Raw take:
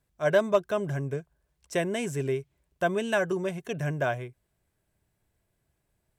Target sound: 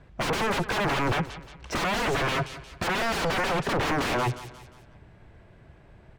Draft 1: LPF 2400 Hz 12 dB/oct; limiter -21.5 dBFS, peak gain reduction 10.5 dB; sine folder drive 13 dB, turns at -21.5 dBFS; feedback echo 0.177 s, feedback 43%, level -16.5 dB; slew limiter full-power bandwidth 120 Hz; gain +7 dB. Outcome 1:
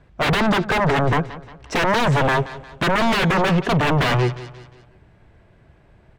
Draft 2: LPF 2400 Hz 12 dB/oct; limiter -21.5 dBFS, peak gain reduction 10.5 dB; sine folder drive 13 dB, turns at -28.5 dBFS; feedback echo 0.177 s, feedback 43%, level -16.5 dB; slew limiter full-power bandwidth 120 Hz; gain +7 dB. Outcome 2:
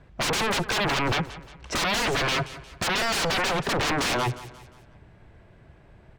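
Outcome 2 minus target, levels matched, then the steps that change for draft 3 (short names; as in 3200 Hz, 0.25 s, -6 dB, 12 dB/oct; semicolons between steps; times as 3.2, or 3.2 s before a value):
slew limiter: distortion -9 dB
change: slew limiter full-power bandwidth 44.5 Hz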